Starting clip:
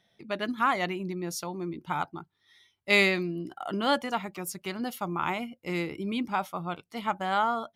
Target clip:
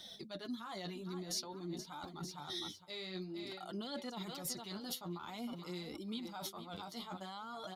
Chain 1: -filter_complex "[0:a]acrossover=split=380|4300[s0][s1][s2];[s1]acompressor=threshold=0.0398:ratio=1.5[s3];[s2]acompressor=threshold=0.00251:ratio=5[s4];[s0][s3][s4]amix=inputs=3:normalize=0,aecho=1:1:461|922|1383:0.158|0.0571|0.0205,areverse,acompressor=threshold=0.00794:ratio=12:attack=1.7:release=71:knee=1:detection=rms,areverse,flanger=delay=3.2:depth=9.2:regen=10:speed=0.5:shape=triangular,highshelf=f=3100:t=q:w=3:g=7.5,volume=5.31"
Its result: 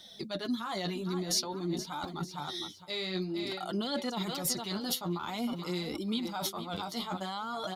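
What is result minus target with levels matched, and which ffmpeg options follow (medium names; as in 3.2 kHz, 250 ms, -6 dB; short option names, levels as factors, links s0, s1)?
compression: peak gain reduction -9.5 dB
-filter_complex "[0:a]acrossover=split=380|4300[s0][s1][s2];[s1]acompressor=threshold=0.0398:ratio=1.5[s3];[s2]acompressor=threshold=0.00251:ratio=5[s4];[s0][s3][s4]amix=inputs=3:normalize=0,aecho=1:1:461|922|1383:0.158|0.0571|0.0205,areverse,acompressor=threshold=0.00237:ratio=12:attack=1.7:release=71:knee=1:detection=rms,areverse,flanger=delay=3.2:depth=9.2:regen=10:speed=0.5:shape=triangular,highshelf=f=3100:t=q:w=3:g=7.5,volume=5.31"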